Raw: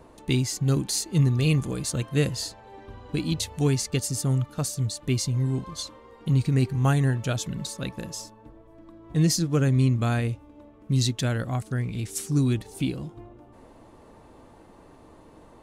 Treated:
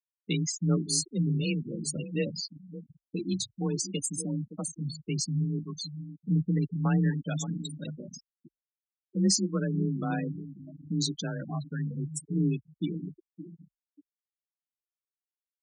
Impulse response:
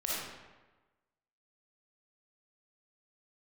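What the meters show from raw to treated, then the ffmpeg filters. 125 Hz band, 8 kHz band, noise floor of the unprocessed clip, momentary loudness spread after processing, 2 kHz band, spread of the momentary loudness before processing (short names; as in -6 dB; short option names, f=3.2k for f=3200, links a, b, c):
-7.5 dB, -2.0 dB, -52 dBFS, 15 LU, -7.0 dB, 13 LU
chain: -filter_complex "[0:a]highpass=f=46:p=1,lowshelf=f=70:g=-9.5,asplit=2[a][b];[b]adelay=568,lowpass=f=4.9k:p=1,volume=-12dB,asplit=2[c][d];[d]adelay=568,lowpass=f=4.9k:p=1,volume=0.31,asplit=2[e][f];[f]adelay=568,lowpass=f=4.9k:p=1,volume=0.31[g];[a][c][e][g]amix=inputs=4:normalize=0,acrossover=split=390|460|5100[h][i][j][k];[i]acompressor=threshold=-50dB:ratio=12[l];[h][l][j][k]amix=inputs=4:normalize=0,anlmdn=0.0631,flanger=delay=6.7:depth=5.9:regen=51:speed=0.15:shape=sinusoidal,afftfilt=real='re*gte(hypot(re,im),0.0398)':imag='im*gte(hypot(re,im),0.0398)':win_size=1024:overlap=0.75,afreqshift=29,adynamicequalizer=threshold=0.00251:dfrequency=4400:dqfactor=0.7:tfrequency=4400:tqfactor=0.7:attack=5:release=100:ratio=0.375:range=4:mode=boostabove:tftype=highshelf"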